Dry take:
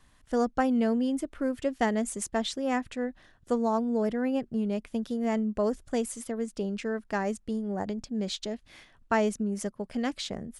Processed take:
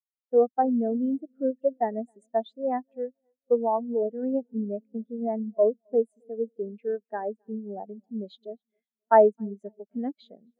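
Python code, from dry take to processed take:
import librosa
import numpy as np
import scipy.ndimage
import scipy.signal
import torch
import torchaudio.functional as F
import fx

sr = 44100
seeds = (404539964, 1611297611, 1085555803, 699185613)

p1 = scipy.signal.sosfilt(scipy.signal.bessel(2, 340.0, 'highpass', norm='mag', fs=sr, output='sos'), x)
p2 = fx.high_shelf(p1, sr, hz=5800.0, db=-6.5)
p3 = fx.notch(p2, sr, hz=5500.0, q=7.0)
p4 = fx.rider(p3, sr, range_db=4, speed_s=0.5)
p5 = p3 + F.gain(torch.from_numpy(p4), -1.0).numpy()
p6 = fx.echo_feedback(p5, sr, ms=266, feedback_pct=53, wet_db=-17.0)
y = fx.spectral_expand(p6, sr, expansion=2.5)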